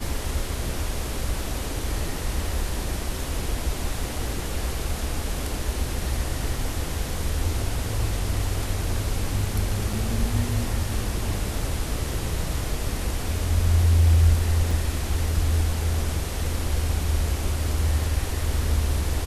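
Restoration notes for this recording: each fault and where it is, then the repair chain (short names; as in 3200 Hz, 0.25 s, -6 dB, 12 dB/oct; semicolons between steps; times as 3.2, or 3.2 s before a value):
9.93 gap 4.1 ms
14.71 gap 3.3 ms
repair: interpolate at 9.93, 4.1 ms; interpolate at 14.71, 3.3 ms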